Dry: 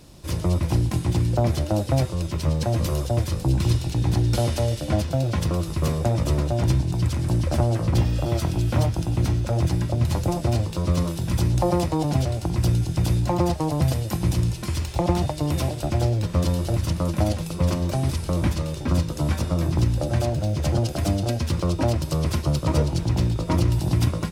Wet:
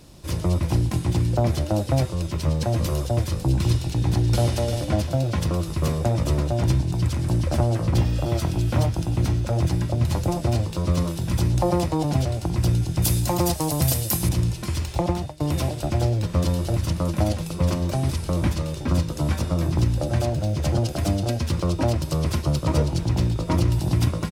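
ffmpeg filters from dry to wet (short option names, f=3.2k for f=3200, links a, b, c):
-filter_complex "[0:a]asplit=2[a][b];[b]afade=t=in:st=3.92:d=0.01,afade=t=out:st=4.49:d=0.01,aecho=0:1:350|700|1050|1400:0.375837|0.131543|0.0460401|0.016114[c];[a][c]amix=inputs=2:normalize=0,asettb=1/sr,asplit=3[d][e][f];[d]atrim=end=13.024[g];[e]atrim=start=13.02:end=14.29,asetpts=PTS-STARTPTS,afade=t=in:d=0.004:c=qsin,afade=t=out:st=1.266:d=0.004:c=qsin,aemphasis=mode=production:type=75fm[h];[f]atrim=start=14.286[i];[g][h]acrossfade=d=0.004:c1=hsin:c2=qsin[j];[j][i]acrossfade=d=0.004:c1=qsin:c2=hsin,asplit=2[k][l];[k]atrim=end=15.4,asetpts=PTS-STARTPTS,afade=t=out:st=14.99:d=0.41:silence=0.125893[m];[l]atrim=start=15.4,asetpts=PTS-STARTPTS,afade=t=in:d=0.004:c=hsin:silence=0.125893[n];[m][n]concat=n=2:v=0:a=1"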